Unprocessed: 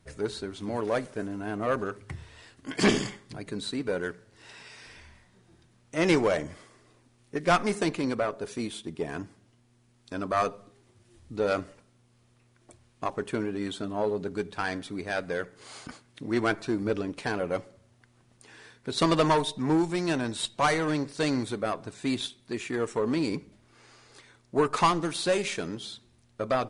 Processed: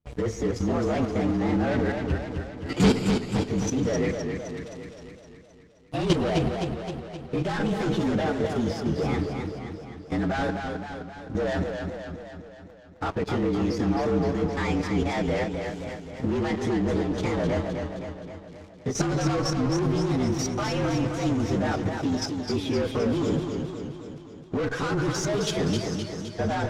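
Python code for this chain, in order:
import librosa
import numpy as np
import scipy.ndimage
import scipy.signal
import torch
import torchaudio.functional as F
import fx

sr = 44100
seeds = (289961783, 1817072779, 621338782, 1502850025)

p1 = fx.partial_stretch(x, sr, pct=115)
p2 = p1 + fx.echo_feedback(p1, sr, ms=142, feedback_pct=59, wet_db=-22.0, dry=0)
p3 = fx.leveller(p2, sr, passes=5)
p4 = fx.bass_treble(p3, sr, bass_db=4, treble_db=13)
p5 = fx.level_steps(p4, sr, step_db=11)
p6 = fx.spacing_loss(p5, sr, db_at_10k=29)
p7 = fx.echo_warbled(p6, sr, ms=260, feedback_pct=59, rate_hz=2.8, cents=101, wet_db=-5.5)
y = p7 * 10.0 ** (-2.0 / 20.0)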